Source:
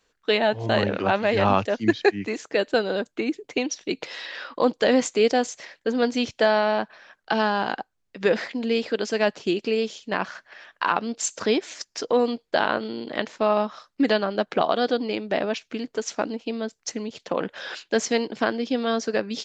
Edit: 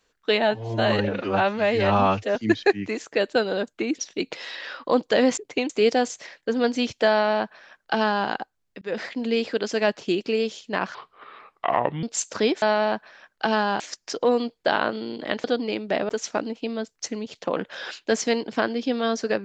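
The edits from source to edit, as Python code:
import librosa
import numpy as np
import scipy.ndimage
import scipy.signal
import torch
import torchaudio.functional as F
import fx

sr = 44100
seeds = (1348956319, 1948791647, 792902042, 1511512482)

y = fx.edit(x, sr, fx.stretch_span(start_s=0.51, length_s=1.23, factor=1.5),
    fx.move(start_s=3.37, length_s=0.32, to_s=5.08),
    fx.duplicate(start_s=6.49, length_s=1.18, to_s=11.68),
    fx.fade_in_span(start_s=8.2, length_s=0.39, curve='qsin'),
    fx.speed_span(start_s=10.33, length_s=0.76, speed=0.7),
    fx.cut(start_s=13.32, length_s=1.53),
    fx.cut(start_s=15.5, length_s=0.43), tone=tone)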